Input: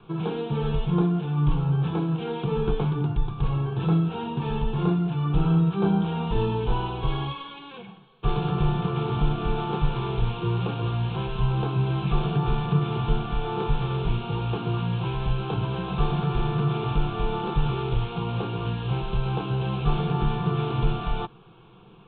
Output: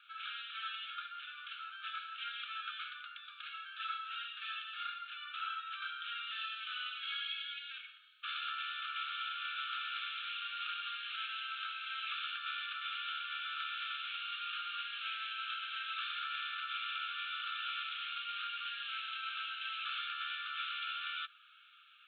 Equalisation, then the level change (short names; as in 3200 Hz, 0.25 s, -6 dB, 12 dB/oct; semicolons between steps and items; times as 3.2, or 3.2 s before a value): brick-wall FIR high-pass 1200 Hz; +1.0 dB